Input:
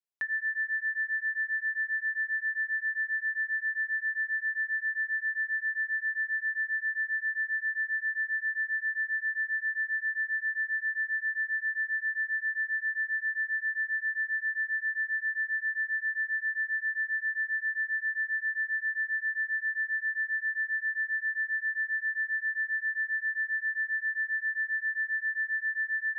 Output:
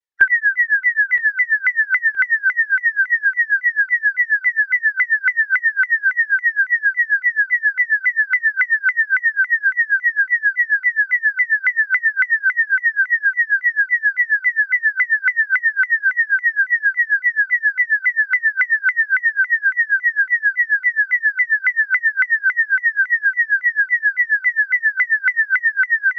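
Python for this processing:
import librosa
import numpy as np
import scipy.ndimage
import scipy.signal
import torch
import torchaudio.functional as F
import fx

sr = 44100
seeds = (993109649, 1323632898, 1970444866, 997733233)

y = fx.spec_quant(x, sr, step_db=30)
y = fx.dereverb_blind(y, sr, rt60_s=0.69)
y = fx.peak_eq(y, sr, hz=1700.0, db=10.0, octaves=0.33)
y = y + 0.62 * np.pad(y, (int(2.4 * sr / 1000.0), 0))[:len(y)]
y = fx.transient(y, sr, attack_db=11, sustain_db=7)
y = fx.air_absorb(y, sr, metres=56.0)
y = fx.echo_feedback(y, sr, ms=969, feedback_pct=45, wet_db=-14.0)
y = fx.vibrato_shape(y, sr, shape='saw_down', rate_hz=3.6, depth_cents=250.0)
y = y * librosa.db_to_amplitude(1.0)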